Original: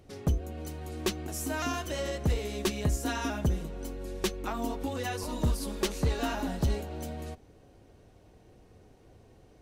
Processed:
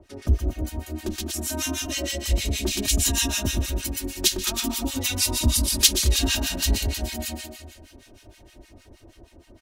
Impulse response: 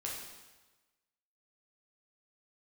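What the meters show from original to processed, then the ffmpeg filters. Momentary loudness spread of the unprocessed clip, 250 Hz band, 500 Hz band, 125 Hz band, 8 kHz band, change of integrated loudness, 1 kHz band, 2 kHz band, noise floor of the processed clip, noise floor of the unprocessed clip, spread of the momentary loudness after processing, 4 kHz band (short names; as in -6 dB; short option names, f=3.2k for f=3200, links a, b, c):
9 LU, +4.0 dB, 0.0 dB, +5.0 dB, +17.0 dB, +9.0 dB, -2.0 dB, +7.0 dB, -55 dBFS, -58 dBFS, 12 LU, +15.5 dB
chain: -filter_complex "[0:a]asplit=2[a][b];[1:a]atrim=start_sample=2205[c];[b][c]afir=irnorm=-1:irlink=0,volume=-9.5dB[d];[a][d]amix=inputs=2:normalize=0,acrossover=split=270|3000[e][f][g];[f]acompressor=threshold=-39dB:ratio=6[h];[e][h][g]amix=inputs=3:normalize=0,aecho=1:1:120|228|325.2|412.7|491.4:0.631|0.398|0.251|0.158|0.1,acrossover=split=1100[i][j];[i]aeval=exprs='val(0)*(1-1/2+1/2*cos(2*PI*6.4*n/s))':c=same[k];[j]aeval=exprs='val(0)*(1-1/2-1/2*cos(2*PI*6.4*n/s))':c=same[l];[k][l]amix=inputs=2:normalize=0,acrossover=split=2100[m][n];[n]dynaudnorm=f=520:g=9:m=13.5dB[o];[m][o]amix=inputs=2:normalize=0,aecho=1:1:3.2:0.85,volume=4dB" -ar 48000 -c:a libopus -b:a 96k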